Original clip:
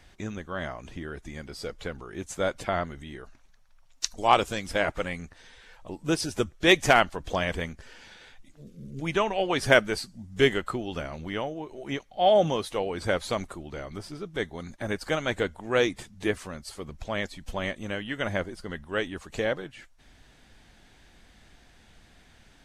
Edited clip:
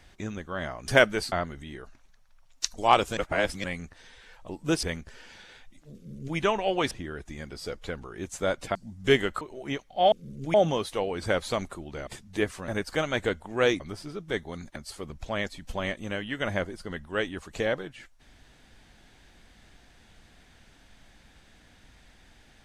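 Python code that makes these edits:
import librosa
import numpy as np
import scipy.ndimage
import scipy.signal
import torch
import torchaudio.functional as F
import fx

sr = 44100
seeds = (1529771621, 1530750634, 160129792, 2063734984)

y = fx.edit(x, sr, fx.swap(start_s=0.88, length_s=1.84, other_s=9.63, other_length_s=0.44),
    fx.reverse_span(start_s=4.57, length_s=0.47),
    fx.cut(start_s=6.23, length_s=1.32),
    fx.duplicate(start_s=8.67, length_s=0.42, to_s=12.33),
    fx.cut(start_s=10.73, length_s=0.89),
    fx.swap(start_s=13.86, length_s=0.96, other_s=15.94, other_length_s=0.61), tone=tone)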